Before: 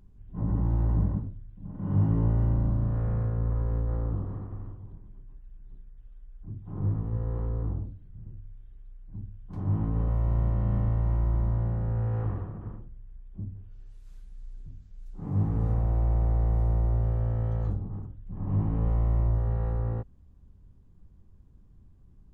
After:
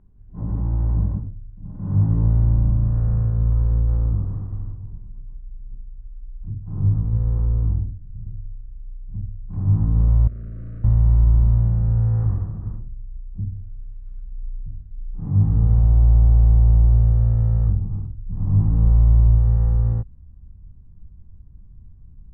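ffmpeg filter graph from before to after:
-filter_complex "[0:a]asettb=1/sr,asplit=3[s0][s1][s2];[s0]atrim=end=10.274[s3];[s1]atrim=start=10.27:end=10.84,asetpts=PTS-STARTPTS,afade=t=in:d=0.004:c=qsin,afade=t=out:st=0.566:d=0.004:c=qsin,aecho=1:1:6.3:0.63,atrim=end_sample=25137,aeval=exprs='(tanh(112*val(0)+0.4)-tanh(0.4))/112':c=same,asuperstop=centerf=880:order=8:qfactor=1.7[s4];[s2]atrim=start=10.836[s5];[s3][s4]acrossfade=d=0.004:c1=hsin:c2=qsin[s6];[s6][s5]acrossfade=d=0.004:c1=qsin:c2=hsin,lowpass=1700,asubboost=boost=3.5:cutoff=190"

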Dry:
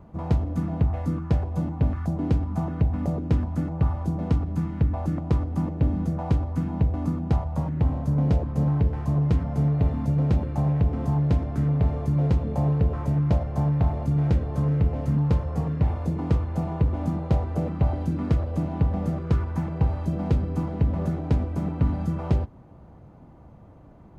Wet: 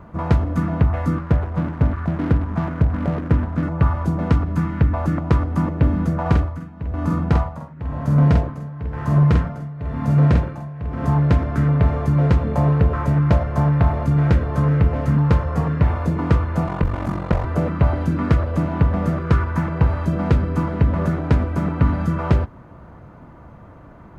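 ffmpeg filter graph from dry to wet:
-filter_complex "[0:a]asettb=1/sr,asplit=3[s0][s1][s2];[s0]atrim=end=1.184[s3];[s1]atrim=start=1.18:end=3.63,asetpts=PTS-STARTPTS,afade=t=in:d=0.004:c=qsin,afade=t=out:st=2.446:d=0.004:c=qsin,lowpass=f=1200:p=1,aeval=exprs='sgn(val(0))*max(abs(val(0))-0.00944,0)':c=same[s4];[s2]atrim=start=3.626[s5];[s3][s4]acrossfade=d=0.004:c1=hsin:c2=qsin[s6];[s6][s5]acrossfade=d=0.004:c1=qsin:c2=hsin,asettb=1/sr,asplit=3[s7][s8][s9];[s7]atrim=end=6.214[s10];[s8]atrim=start=6.21:end=11.04,asetpts=PTS-STARTPTS,afade=t=in:d=0.004:c=qsin,afade=t=out:st=4.826:d=0.004:c=qsin,tremolo=f=1:d=0.9,asplit=2[s11][s12];[s12]adelay=47,volume=0.668[s13];[s11][s13]amix=inputs=2:normalize=0,atrim=end_sample=213003[s14];[s9]atrim=start=11.036[s15];[s10][s14]acrossfade=d=0.004:c1=hsin:c2=qsin[s16];[s16][s15]acrossfade=d=0.004:c1=qsin:c2=hsin,asettb=1/sr,asplit=3[s17][s18][s19];[s17]atrim=end=16.674[s20];[s18]atrim=start=16.67:end=17.45,asetpts=PTS-STARTPTS,afade=t=in:d=0.004:c=qsin,afade=t=out:st=0.776:d=0.004:c=qsin,highshelf=f=2500:g=9.5,acrossover=split=2500[s21][s22];[s22]acompressor=threshold=0.00251:ratio=4:attack=1:release=60[s23];[s21][s23]amix=inputs=2:normalize=0,aeval=exprs='val(0)*sin(2*PI*23*n/s)':c=same[s24];[s19]atrim=start=17.446[s25];[s20][s24]acrossfade=d=0.004:c1=hsin:c2=qsin[s26];[s26][s25]acrossfade=d=0.004:c1=qsin:c2=hsin,equalizer=f=1500:t=o:w=1.5:g=10,bandreject=f=790:w=12,volume=1.88"

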